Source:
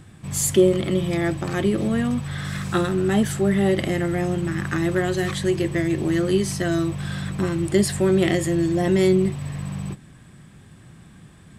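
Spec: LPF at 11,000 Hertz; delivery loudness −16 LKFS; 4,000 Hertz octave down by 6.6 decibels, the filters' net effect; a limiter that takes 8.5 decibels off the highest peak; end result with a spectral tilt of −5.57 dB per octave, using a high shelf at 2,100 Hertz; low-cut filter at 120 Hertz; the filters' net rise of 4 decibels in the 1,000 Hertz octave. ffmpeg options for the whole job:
ffmpeg -i in.wav -af "highpass=120,lowpass=11000,equalizer=frequency=1000:width_type=o:gain=7.5,highshelf=frequency=2100:gain=-6,equalizer=frequency=4000:width_type=o:gain=-3.5,volume=8dB,alimiter=limit=-6dB:level=0:latency=1" out.wav

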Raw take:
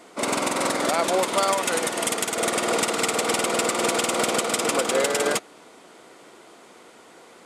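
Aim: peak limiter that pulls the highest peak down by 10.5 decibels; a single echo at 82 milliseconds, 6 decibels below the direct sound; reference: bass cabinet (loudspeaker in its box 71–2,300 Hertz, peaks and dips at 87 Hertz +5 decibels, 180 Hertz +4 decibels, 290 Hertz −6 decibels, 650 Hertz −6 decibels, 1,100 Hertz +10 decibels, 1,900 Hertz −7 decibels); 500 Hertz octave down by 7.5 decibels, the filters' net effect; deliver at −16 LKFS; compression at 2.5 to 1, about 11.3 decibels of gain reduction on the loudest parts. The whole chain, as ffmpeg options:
ffmpeg -i in.wav -af "equalizer=frequency=500:width_type=o:gain=-6.5,acompressor=threshold=-38dB:ratio=2.5,alimiter=level_in=5.5dB:limit=-24dB:level=0:latency=1,volume=-5.5dB,highpass=frequency=71:width=0.5412,highpass=frequency=71:width=1.3066,equalizer=frequency=87:width_type=q:width=4:gain=5,equalizer=frequency=180:width_type=q:width=4:gain=4,equalizer=frequency=290:width_type=q:width=4:gain=-6,equalizer=frequency=650:width_type=q:width=4:gain=-6,equalizer=frequency=1100:width_type=q:width=4:gain=10,equalizer=frequency=1900:width_type=q:width=4:gain=-7,lowpass=frequency=2300:width=0.5412,lowpass=frequency=2300:width=1.3066,aecho=1:1:82:0.501,volume=24dB" out.wav

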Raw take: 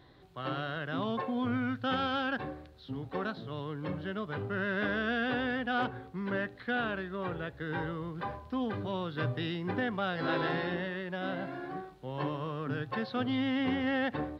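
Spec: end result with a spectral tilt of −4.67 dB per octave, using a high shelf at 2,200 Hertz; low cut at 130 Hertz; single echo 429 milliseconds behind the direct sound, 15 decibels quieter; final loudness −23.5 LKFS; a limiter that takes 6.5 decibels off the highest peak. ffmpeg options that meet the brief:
ffmpeg -i in.wav -af "highpass=130,highshelf=frequency=2200:gain=-4,alimiter=level_in=3.5dB:limit=-24dB:level=0:latency=1,volume=-3.5dB,aecho=1:1:429:0.178,volume=14dB" out.wav

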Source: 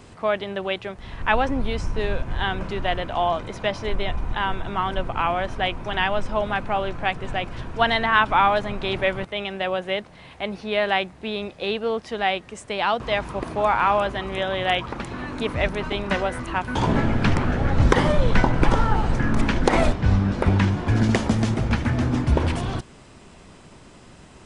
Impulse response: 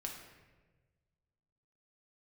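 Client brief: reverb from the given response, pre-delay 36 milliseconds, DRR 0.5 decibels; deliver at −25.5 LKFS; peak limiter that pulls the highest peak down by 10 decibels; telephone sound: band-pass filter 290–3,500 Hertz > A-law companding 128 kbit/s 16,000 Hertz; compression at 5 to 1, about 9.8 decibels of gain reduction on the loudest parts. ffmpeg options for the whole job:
-filter_complex "[0:a]acompressor=threshold=-22dB:ratio=5,alimiter=limit=-20dB:level=0:latency=1,asplit=2[link_01][link_02];[1:a]atrim=start_sample=2205,adelay=36[link_03];[link_02][link_03]afir=irnorm=-1:irlink=0,volume=1dB[link_04];[link_01][link_04]amix=inputs=2:normalize=0,highpass=290,lowpass=3500,volume=5dB" -ar 16000 -c:a pcm_alaw

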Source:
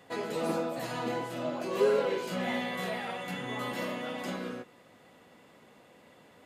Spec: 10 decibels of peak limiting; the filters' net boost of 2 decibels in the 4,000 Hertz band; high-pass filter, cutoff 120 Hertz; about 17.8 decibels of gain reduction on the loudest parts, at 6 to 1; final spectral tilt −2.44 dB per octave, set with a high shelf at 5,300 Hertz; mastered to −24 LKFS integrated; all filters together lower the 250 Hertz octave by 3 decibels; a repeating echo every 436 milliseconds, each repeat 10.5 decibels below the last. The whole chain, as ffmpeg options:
ffmpeg -i in.wav -af "highpass=120,equalizer=frequency=250:width_type=o:gain=-3.5,equalizer=frequency=4000:width_type=o:gain=4,highshelf=frequency=5300:gain=-4,acompressor=threshold=-42dB:ratio=6,alimiter=level_in=18dB:limit=-24dB:level=0:latency=1,volume=-18dB,aecho=1:1:436|872|1308:0.299|0.0896|0.0269,volume=26.5dB" out.wav

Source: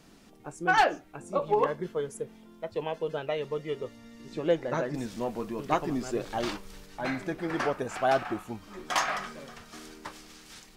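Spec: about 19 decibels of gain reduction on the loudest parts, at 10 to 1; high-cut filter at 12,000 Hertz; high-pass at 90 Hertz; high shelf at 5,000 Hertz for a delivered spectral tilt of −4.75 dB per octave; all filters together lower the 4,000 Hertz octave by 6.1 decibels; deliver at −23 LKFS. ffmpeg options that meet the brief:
ffmpeg -i in.wav -af "highpass=90,lowpass=12000,equalizer=frequency=4000:width_type=o:gain=-5,highshelf=frequency=5000:gain=-8,acompressor=threshold=-39dB:ratio=10,volume=22dB" out.wav

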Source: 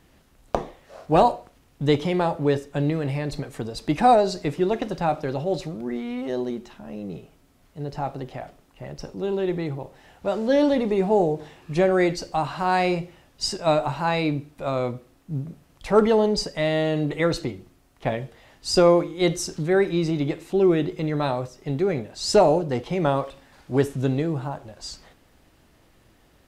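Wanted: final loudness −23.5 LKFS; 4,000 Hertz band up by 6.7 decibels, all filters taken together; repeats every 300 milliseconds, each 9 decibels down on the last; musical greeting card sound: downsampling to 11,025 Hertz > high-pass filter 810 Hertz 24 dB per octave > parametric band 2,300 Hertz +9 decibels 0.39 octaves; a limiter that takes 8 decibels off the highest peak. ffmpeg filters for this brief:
ffmpeg -i in.wav -af "equalizer=frequency=4000:width_type=o:gain=7.5,alimiter=limit=-13.5dB:level=0:latency=1,aecho=1:1:300|600|900|1200:0.355|0.124|0.0435|0.0152,aresample=11025,aresample=44100,highpass=frequency=810:width=0.5412,highpass=frequency=810:width=1.3066,equalizer=frequency=2300:width_type=o:width=0.39:gain=9,volume=6dB" out.wav

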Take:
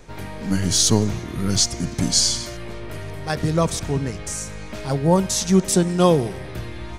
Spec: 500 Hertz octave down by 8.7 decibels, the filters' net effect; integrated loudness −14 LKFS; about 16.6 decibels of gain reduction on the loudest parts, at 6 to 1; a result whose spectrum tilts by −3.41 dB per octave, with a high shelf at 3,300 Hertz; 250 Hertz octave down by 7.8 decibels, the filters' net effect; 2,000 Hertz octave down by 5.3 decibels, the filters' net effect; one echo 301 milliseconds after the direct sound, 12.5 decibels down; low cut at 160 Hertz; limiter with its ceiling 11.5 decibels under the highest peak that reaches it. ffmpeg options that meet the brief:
ffmpeg -i in.wav -af "highpass=160,equalizer=frequency=250:width_type=o:gain=-8,equalizer=frequency=500:width_type=o:gain=-8,equalizer=frequency=2000:width_type=o:gain=-8,highshelf=frequency=3300:gain=5.5,acompressor=threshold=-29dB:ratio=6,alimiter=level_in=2.5dB:limit=-24dB:level=0:latency=1,volume=-2.5dB,aecho=1:1:301:0.237,volume=22.5dB" out.wav

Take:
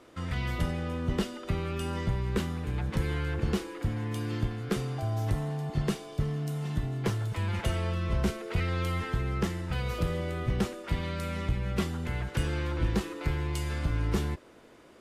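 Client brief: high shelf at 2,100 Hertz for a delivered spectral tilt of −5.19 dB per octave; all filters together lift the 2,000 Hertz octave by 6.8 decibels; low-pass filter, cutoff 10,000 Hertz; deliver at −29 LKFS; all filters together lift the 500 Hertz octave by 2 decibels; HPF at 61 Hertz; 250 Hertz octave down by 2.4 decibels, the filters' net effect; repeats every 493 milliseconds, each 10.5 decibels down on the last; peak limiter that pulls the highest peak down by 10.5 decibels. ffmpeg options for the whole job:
ffmpeg -i in.wav -af "highpass=61,lowpass=10000,equalizer=frequency=250:width_type=o:gain=-5,equalizer=frequency=500:width_type=o:gain=3.5,equalizer=frequency=2000:width_type=o:gain=5,highshelf=frequency=2100:gain=5.5,alimiter=level_in=1.5dB:limit=-24dB:level=0:latency=1,volume=-1.5dB,aecho=1:1:493|986|1479:0.299|0.0896|0.0269,volume=5.5dB" out.wav

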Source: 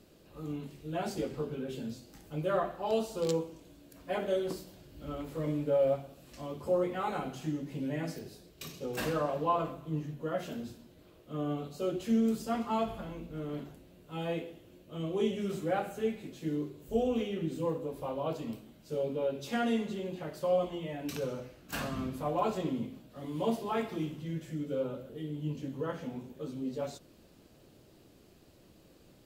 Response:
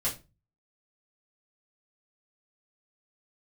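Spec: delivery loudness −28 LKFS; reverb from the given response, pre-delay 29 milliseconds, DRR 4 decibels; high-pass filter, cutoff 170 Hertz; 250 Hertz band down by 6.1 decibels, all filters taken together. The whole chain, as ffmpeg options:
-filter_complex "[0:a]highpass=170,equalizer=frequency=250:width_type=o:gain=-6.5,asplit=2[link_01][link_02];[1:a]atrim=start_sample=2205,adelay=29[link_03];[link_02][link_03]afir=irnorm=-1:irlink=0,volume=-10dB[link_04];[link_01][link_04]amix=inputs=2:normalize=0,volume=7.5dB"

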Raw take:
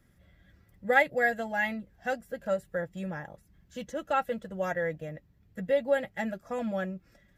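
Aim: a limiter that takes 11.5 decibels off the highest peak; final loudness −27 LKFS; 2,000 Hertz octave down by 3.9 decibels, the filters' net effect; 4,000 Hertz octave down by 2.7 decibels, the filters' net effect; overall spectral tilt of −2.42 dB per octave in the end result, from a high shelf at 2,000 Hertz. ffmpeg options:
ffmpeg -i in.wav -af "highshelf=frequency=2000:gain=4,equalizer=frequency=2000:width_type=o:gain=-6,equalizer=frequency=4000:width_type=o:gain=-5,volume=8dB,alimiter=limit=-15.5dB:level=0:latency=1" out.wav

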